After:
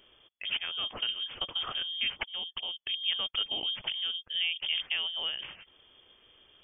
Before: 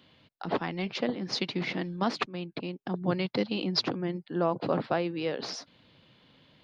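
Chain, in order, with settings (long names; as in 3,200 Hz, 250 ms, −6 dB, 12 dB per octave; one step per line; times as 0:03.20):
low-shelf EQ 450 Hz +4 dB
in parallel at 0 dB: downward compressor, threshold −33 dBFS, peak gain reduction 12.5 dB
on the sum: voice inversion scrambler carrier 3,400 Hz
level −8 dB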